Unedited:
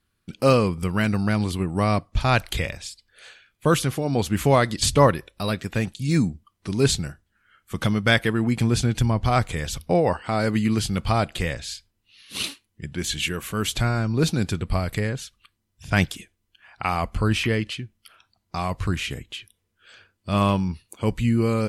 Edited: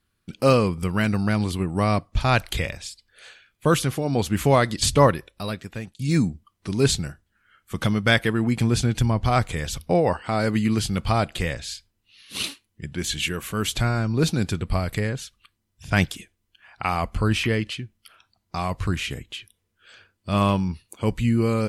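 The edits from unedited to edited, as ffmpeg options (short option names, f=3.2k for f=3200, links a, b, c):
-filter_complex "[0:a]asplit=2[a][b];[a]atrim=end=5.99,asetpts=PTS-STARTPTS,afade=t=out:st=5.06:d=0.93:silence=0.188365[c];[b]atrim=start=5.99,asetpts=PTS-STARTPTS,afade=t=in:d=0.004:c=hsin:silence=0.188365[d];[c][d]concat=n=2:v=0:a=1"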